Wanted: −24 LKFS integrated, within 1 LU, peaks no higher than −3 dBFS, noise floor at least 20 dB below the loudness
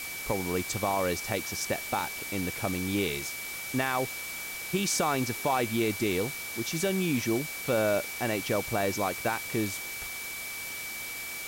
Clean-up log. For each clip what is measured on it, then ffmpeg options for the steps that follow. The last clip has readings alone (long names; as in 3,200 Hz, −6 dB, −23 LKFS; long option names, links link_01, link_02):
interfering tone 2,300 Hz; level of the tone −38 dBFS; background noise floor −38 dBFS; target noise floor −50 dBFS; integrated loudness −30.0 LKFS; sample peak −15.0 dBFS; target loudness −24.0 LKFS
→ -af "bandreject=frequency=2300:width=30"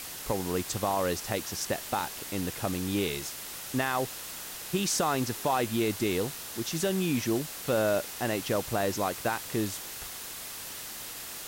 interfering tone none found; background noise floor −41 dBFS; target noise floor −51 dBFS
→ -af "afftdn=noise_reduction=10:noise_floor=-41"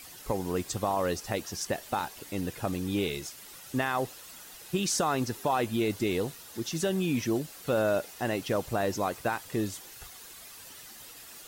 background noise floor −48 dBFS; target noise floor −51 dBFS
→ -af "afftdn=noise_reduction=6:noise_floor=-48"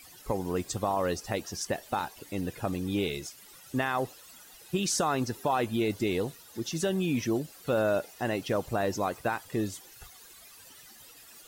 background noise floor −53 dBFS; integrated loudness −31.0 LKFS; sample peak −16.5 dBFS; target loudness −24.0 LKFS
→ -af "volume=7dB"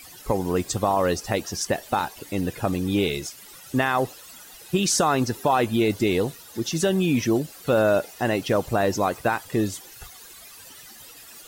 integrated loudness −24.0 LKFS; sample peak −9.5 dBFS; background noise floor −46 dBFS